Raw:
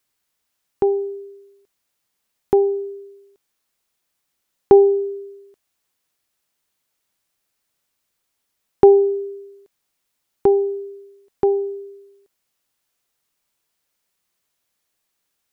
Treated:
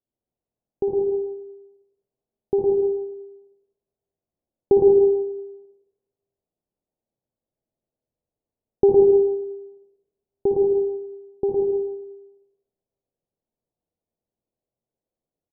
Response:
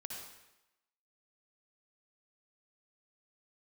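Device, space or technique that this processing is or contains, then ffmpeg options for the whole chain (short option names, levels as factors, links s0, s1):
next room: -filter_complex "[0:a]lowpass=f=650:w=0.5412,lowpass=f=650:w=1.3066[s0];[1:a]atrim=start_sample=2205[s1];[s0][s1]afir=irnorm=-1:irlink=0,aecho=1:1:110.8|169.1:0.631|0.251"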